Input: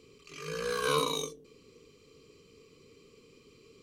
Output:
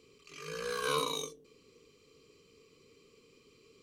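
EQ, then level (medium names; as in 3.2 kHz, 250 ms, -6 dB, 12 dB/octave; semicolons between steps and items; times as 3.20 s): bass shelf 350 Hz -4.5 dB; -2.5 dB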